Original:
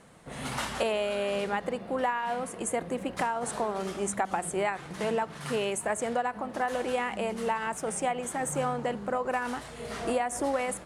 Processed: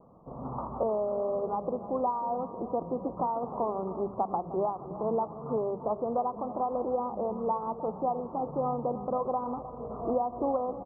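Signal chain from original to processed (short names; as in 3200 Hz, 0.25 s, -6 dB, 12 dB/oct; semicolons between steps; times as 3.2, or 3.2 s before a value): steep low-pass 1200 Hz 96 dB/oct; notches 50/100/150/200 Hz; feedback echo 0.308 s, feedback 56%, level -14.5 dB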